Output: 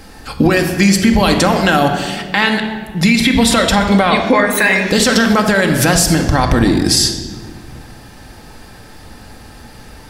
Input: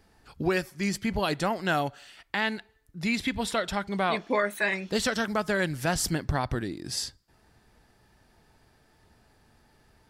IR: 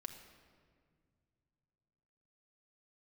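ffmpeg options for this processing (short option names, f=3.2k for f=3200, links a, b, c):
-filter_complex "[0:a]equalizer=f=13k:t=o:w=2.6:g=3,acompressor=threshold=-30dB:ratio=6[a];[1:a]atrim=start_sample=2205,asetrate=57330,aresample=44100[b];[a][b]afir=irnorm=-1:irlink=0,alimiter=level_in=30.5dB:limit=-1dB:release=50:level=0:latency=1,volume=-1dB"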